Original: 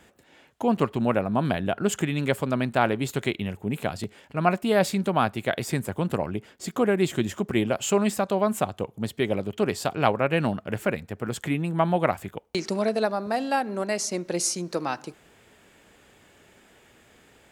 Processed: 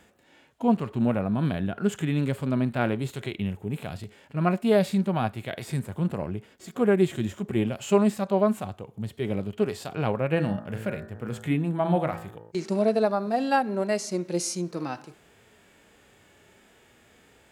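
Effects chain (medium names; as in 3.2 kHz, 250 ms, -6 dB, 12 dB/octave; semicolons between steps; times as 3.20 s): 10.33–12.52 s: de-hum 55.1 Hz, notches 34; harmonic-percussive split percussive -14 dB; trim +2.5 dB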